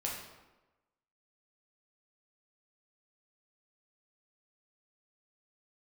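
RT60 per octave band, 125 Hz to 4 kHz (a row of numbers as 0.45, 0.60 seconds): 1.0, 1.1, 1.1, 1.1, 0.90, 0.75 seconds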